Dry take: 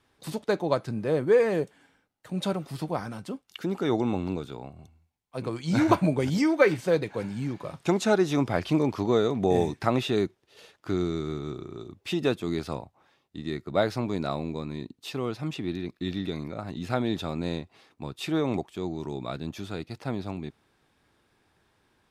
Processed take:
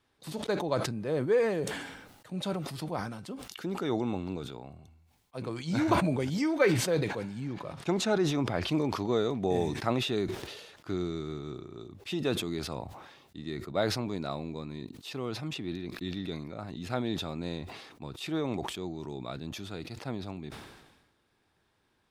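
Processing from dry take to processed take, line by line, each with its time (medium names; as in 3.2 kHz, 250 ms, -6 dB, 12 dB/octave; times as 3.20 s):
7.40–8.68 s: treble shelf 5.4 kHz -6.5 dB
whole clip: peaking EQ 3.9 kHz +2 dB; decay stretcher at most 49 dB/s; trim -5.5 dB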